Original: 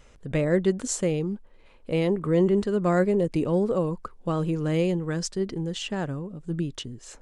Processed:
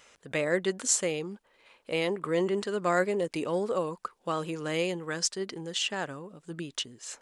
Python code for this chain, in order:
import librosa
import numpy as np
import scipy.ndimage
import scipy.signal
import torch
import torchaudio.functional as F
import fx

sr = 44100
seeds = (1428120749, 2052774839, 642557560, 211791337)

y = fx.highpass(x, sr, hz=1200.0, slope=6)
y = F.gain(torch.from_numpy(y), 4.5).numpy()